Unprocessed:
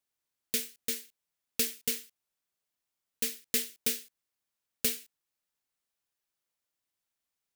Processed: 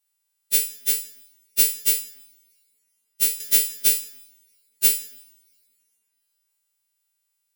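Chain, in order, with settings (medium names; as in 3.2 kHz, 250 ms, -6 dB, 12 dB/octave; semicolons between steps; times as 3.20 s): partials quantised in pitch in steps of 2 st; two-slope reverb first 0.75 s, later 2.7 s, from -24 dB, DRR 11 dB; 3.40–3.89 s: three bands compressed up and down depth 40%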